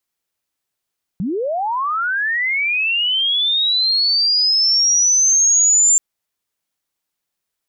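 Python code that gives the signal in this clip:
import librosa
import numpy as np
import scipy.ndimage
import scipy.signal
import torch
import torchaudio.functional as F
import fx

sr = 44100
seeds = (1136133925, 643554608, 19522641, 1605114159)

y = fx.chirp(sr, length_s=4.78, from_hz=160.0, to_hz=7300.0, law='linear', from_db=-18.5, to_db=-9.5)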